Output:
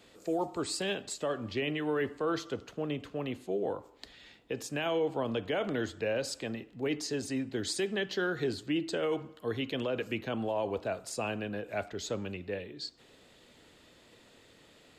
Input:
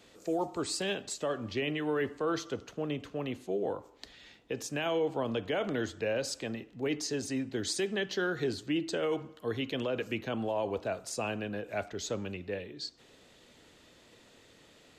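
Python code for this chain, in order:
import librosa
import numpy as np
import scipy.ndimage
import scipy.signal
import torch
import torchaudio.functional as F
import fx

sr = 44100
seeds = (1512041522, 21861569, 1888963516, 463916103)

y = fx.peak_eq(x, sr, hz=6000.0, db=-5.5, octaves=0.23)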